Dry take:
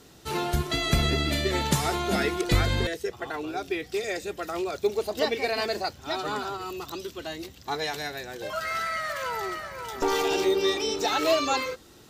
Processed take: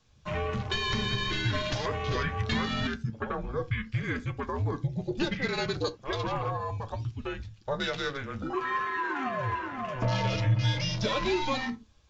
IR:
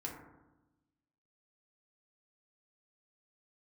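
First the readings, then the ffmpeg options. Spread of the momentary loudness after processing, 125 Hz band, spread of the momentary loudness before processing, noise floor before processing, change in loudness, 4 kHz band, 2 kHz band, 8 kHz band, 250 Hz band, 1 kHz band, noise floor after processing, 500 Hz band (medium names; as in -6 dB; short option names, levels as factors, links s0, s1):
7 LU, +2.5 dB, 11 LU, -52 dBFS, -3.0 dB, -3.5 dB, -1.5 dB, -11.0 dB, -2.0 dB, -3.0 dB, -56 dBFS, -6.0 dB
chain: -filter_complex "[0:a]acontrast=37,lowshelf=f=190:g=-9.5,acompressor=threshold=0.0562:ratio=2.5,afreqshift=-270,afwtdn=0.0178,flanger=delay=8:depth=1.2:regen=57:speed=1.4:shape=triangular,asplit=2[s0][s1];[1:a]atrim=start_sample=2205,atrim=end_sample=3969,lowpass=8700[s2];[s1][s2]afir=irnorm=-1:irlink=0,volume=0.355[s3];[s0][s3]amix=inputs=2:normalize=0,aresample=16000,aresample=44100"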